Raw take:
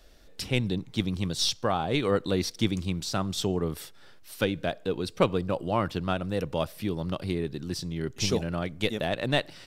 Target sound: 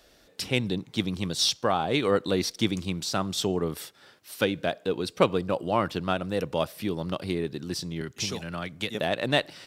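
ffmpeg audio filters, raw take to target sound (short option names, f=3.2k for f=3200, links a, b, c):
-filter_complex "[0:a]highpass=f=180:p=1,asettb=1/sr,asplit=3[a][b][c];[a]atrim=end=8.014[d];[b]atrim=start=8.01:end=8.95,asetpts=PTS-STARTPTS,afade=t=in:d=0.004:c=qsin,afade=t=out:st=0.936:d=0.004:c=qsin,acrossover=split=230|900[e][f][g];[e]acompressor=threshold=-38dB:ratio=4[h];[f]acompressor=threshold=-43dB:ratio=4[i];[g]acompressor=threshold=-31dB:ratio=4[j];[h][i][j]amix=inputs=3:normalize=0[k];[c]atrim=start=8.946[l];[d][k]acrossfade=d=0.004:c1=hsin:c2=qsin[m];[m][l]acrossfade=d=0.004:c1=qsin:c2=hsin,volume=2.5dB"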